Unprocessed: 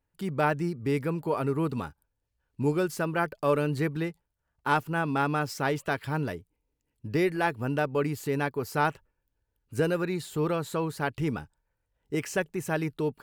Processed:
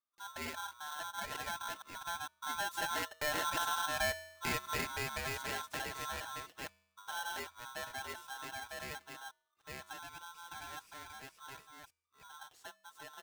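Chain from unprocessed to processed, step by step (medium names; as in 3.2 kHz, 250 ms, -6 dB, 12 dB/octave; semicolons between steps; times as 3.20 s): chunks repeated in reverse 486 ms, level -1 dB; Doppler pass-by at 3.81 s, 23 m/s, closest 15 m; comb 5.3 ms, depth 65%; compression 2:1, threshold -34 dBFS, peak gain reduction 9 dB; feedback comb 280 Hz, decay 0.84 s, mix 50%; polarity switched at an audio rate 1.2 kHz; trim +2 dB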